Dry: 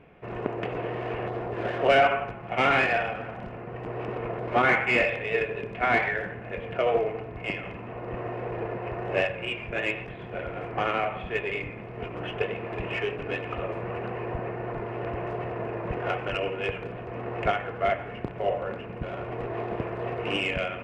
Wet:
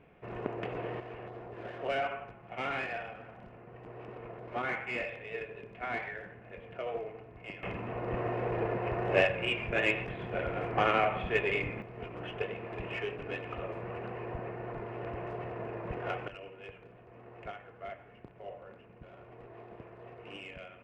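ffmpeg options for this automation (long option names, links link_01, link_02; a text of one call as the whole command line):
ffmpeg -i in.wav -af "asetnsamples=nb_out_samples=441:pad=0,asendcmd='1 volume volume -13dB;7.63 volume volume 0dB;11.82 volume volume -7dB;16.28 volume volume -18dB',volume=-6dB" out.wav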